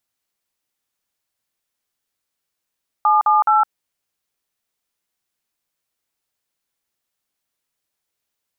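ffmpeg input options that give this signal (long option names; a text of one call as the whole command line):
ffmpeg -f lavfi -i "aevalsrc='0.2*clip(min(mod(t,0.211),0.162-mod(t,0.211))/0.002,0,1)*(eq(floor(t/0.211),0)*(sin(2*PI*852*mod(t,0.211))+sin(2*PI*1209*mod(t,0.211)))+eq(floor(t/0.211),1)*(sin(2*PI*852*mod(t,0.211))+sin(2*PI*1209*mod(t,0.211)))+eq(floor(t/0.211),2)*(sin(2*PI*852*mod(t,0.211))+sin(2*PI*1336*mod(t,0.211))))':duration=0.633:sample_rate=44100" out.wav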